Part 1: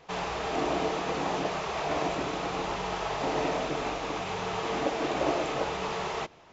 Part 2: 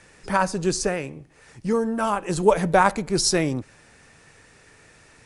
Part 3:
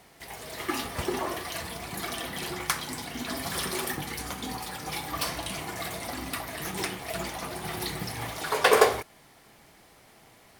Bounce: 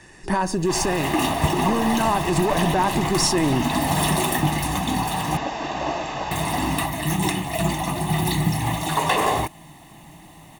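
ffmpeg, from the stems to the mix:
ffmpeg -i stem1.wav -i stem2.wav -i stem3.wav -filter_complex "[0:a]adelay=600,volume=1.5dB[link_01];[1:a]aeval=exprs='if(lt(val(0),0),0.708*val(0),val(0))':channel_layout=same,equalizer=frequency=370:width=2.5:gain=13,volume=-4dB[link_02];[2:a]equalizer=frequency=160:width_type=o:width=0.33:gain=10,equalizer=frequency=315:width_type=o:width=0.33:gain=9,equalizer=frequency=1600:width_type=o:width=0.33:gain=-10,equalizer=frequency=5000:width_type=o:width=0.33:gain=-12,equalizer=frequency=12500:width_type=o:width=0.33:gain=-5,adelay=450,volume=1dB,asplit=3[link_03][link_04][link_05];[link_03]atrim=end=5.37,asetpts=PTS-STARTPTS,afade=type=out:start_time=5.366:duration=0.004:curve=hsin[link_06];[link_04]atrim=start=5.37:end=6.31,asetpts=PTS-STARTPTS,volume=0[link_07];[link_05]atrim=start=6.31,asetpts=PTS-STARTPTS,afade=type=in:duration=0.004:curve=hsin[link_08];[link_06][link_07][link_08]concat=n=3:v=0:a=1[link_09];[link_02][link_09]amix=inputs=2:normalize=0,acontrast=86,alimiter=limit=-11.5dB:level=0:latency=1:release=70,volume=0dB[link_10];[link_01][link_10]amix=inputs=2:normalize=0,aecho=1:1:1.1:0.66" out.wav

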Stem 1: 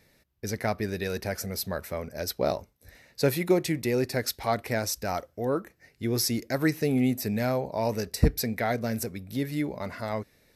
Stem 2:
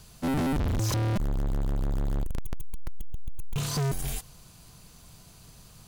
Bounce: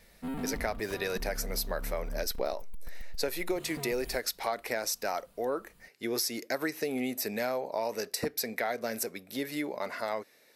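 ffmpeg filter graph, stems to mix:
ffmpeg -i stem1.wav -i stem2.wav -filter_complex "[0:a]highpass=400,volume=2.5dB[link_01];[1:a]equalizer=frequency=5800:width=2:gain=-14,aecho=1:1:4.3:0.83,volume=-12dB[link_02];[link_01][link_02]amix=inputs=2:normalize=0,acompressor=threshold=-28dB:ratio=6" out.wav

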